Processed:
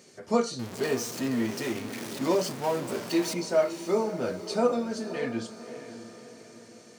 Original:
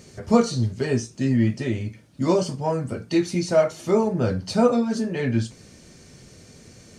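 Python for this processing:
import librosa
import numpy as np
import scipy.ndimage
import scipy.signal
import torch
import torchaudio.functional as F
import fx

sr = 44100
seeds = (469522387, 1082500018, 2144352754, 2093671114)

y = fx.zero_step(x, sr, step_db=-25.5, at=(0.59, 3.34))
y = scipy.signal.sosfilt(scipy.signal.butter(2, 270.0, 'highpass', fs=sr, output='sos'), y)
y = fx.echo_diffused(y, sr, ms=567, feedback_pct=48, wet_db=-12.0)
y = y * 10.0 ** (-5.0 / 20.0)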